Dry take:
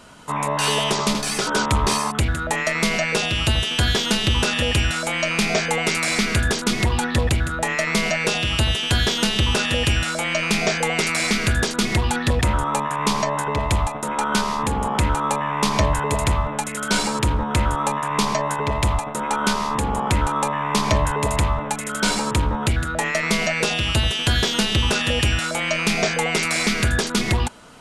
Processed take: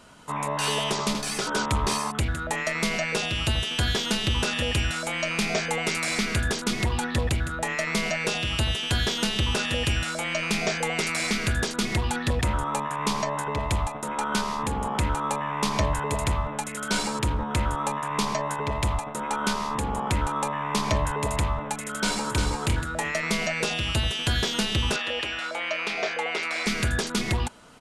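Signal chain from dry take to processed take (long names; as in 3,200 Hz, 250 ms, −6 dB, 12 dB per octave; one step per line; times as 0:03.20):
0:21.89–0:22.46: delay throw 350 ms, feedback 10%, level −5 dB
0:24.96–0:26.66: three-way crossover with the lows and the highs turned down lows −23 dB, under 320 Hz, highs −16 dB, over 4,600 Hz
level −5.5 dB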